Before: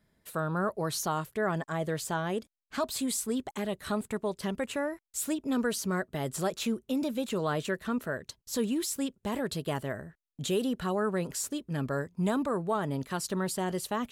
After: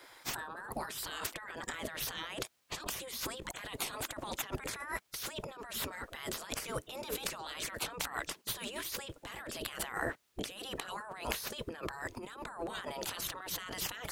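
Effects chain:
gate on every frequency bin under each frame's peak −15 dB weak
high-shelf EQ 6,800 Hz −6 dB
compressor whose output falls as the input rises −57 dBFS, ratio −1
level +15 dB

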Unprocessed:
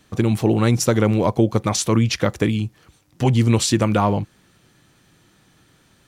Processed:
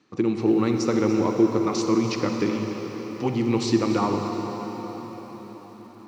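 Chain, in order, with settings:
loudspeaker in its box 190–5,500 Hz, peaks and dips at 330 Hz +7 dB, 630 Hz −7 dB, 1,200 Hz +3 dB, 1,600 Hz −6 dB, 3,300 Hz −9 dB
convolution reverb RT60 5.7 s, pre-delay 40 ms, DRR 3 dB
feedback echo at a low word length 290 ms, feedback 35%, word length 7 bits, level −14 dB
level −5.5 dB

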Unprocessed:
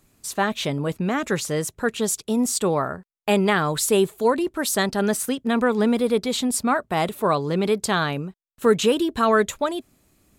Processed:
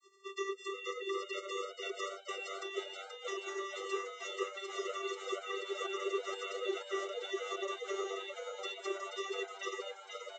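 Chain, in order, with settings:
neighbouring bands swapped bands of 2,000 Hz
gate on every frequency bin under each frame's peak −25 dB weak
downward compressor 12 to 1, threshold −50 dBFS, peak gain reduction 21.5 dB
channel vocoder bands 32, square 391 Hz
on a send: echo with shifted repeats 480 ms, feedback 59%, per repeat +97 Hz, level −6 dB
on the sum: level +15.5 dB

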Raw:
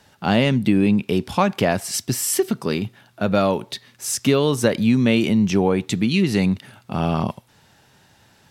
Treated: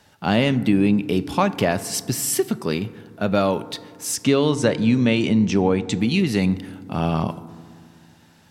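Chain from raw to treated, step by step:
0:04.16–0:06.00: low-pass filter 8,500 Hz 24 dB per octave
feedback delay network reverb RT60 2 s, low-frequency decay 1.4×, high-frequency decay 0.3×, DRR 14.5 dB
level −1 dB

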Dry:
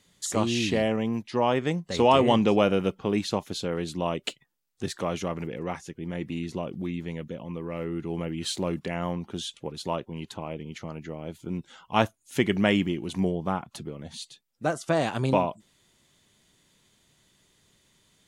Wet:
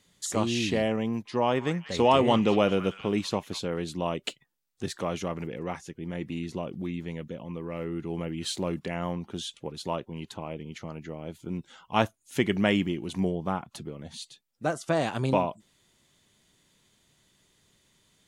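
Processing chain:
0:01.06–0:03.60: echo through a band-pass that steps 193 ms, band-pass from 1,600 Hz, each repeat 0.7 octaves, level −8.5 dB
level −1.5 dB

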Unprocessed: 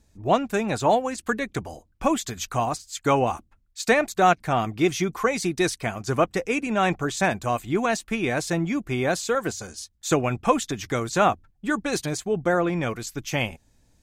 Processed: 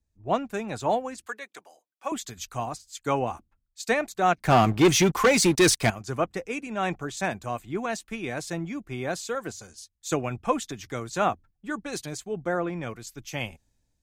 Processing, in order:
0:01.26–0:02.12: high-pass filter 600 Hz 12 dB per octave
0:04.39–0:05.90: leveller curve on the samples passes 3
multiband upward and downward expander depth 40%
level −5.5 dB

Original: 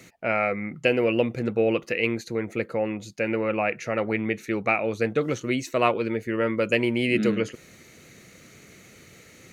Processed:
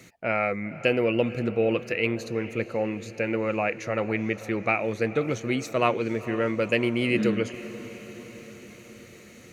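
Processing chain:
parametric band 95 Hz +2.5 dB 1.4 octaves
on a send: feedback delay with all-pass diffusion 477 ms, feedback 63%, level −16 dB
on the sum: level −1.5 dB

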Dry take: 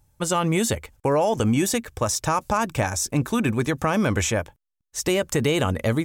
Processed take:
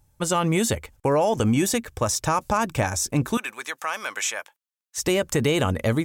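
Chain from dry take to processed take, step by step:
0:03.37–0:04.98: high-pass filter 1,100 Hz 12 dB per octave

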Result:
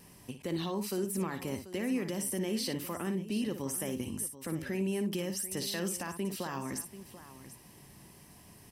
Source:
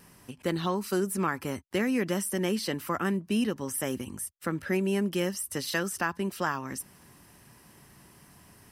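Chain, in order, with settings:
parametric band 1,400 Hz −9.5 dB 0.57 octaves
brickwall limiter −26 dBFS, peak gain reduction 9.5 dB
on a send: multi-tap delay 58/737 ms −9.5/−14.5 dB

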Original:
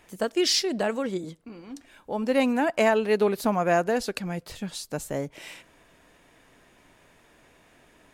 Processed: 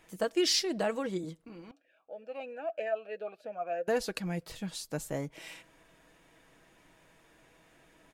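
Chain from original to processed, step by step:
comb filter 6.2 ms, depth 37%
0:01.71–0:03.88: formant filter swept between two vowels a-e 3.1 Hz
level −5 dB

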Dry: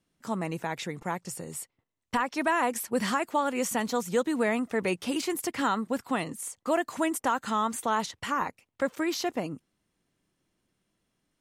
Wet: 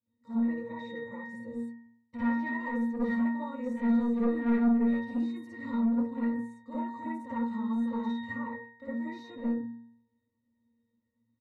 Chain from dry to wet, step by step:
high-shelf EQ 2,600 Hz +10 dB
comb filter 3.6 ms, depth 63%
in parallel at +1.5 dB: brickwall limiter −21 dBFS, peak gain reduction 12 dB
on the sum: resonances in every octave A#, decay 0.7 s
soft clipping −33.5 dBFS, distortion −11 dB
convolution reverb RT60 0.30 s, pre-delay 47 ms, DRR −10 dB

